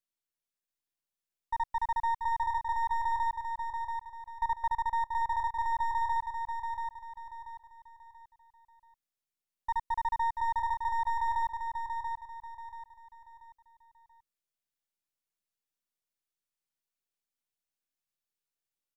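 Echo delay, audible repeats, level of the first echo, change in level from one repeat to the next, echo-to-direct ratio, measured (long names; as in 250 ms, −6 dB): 684 ms, 4, −5.5 dB, −9.0 dB, −5.0 dB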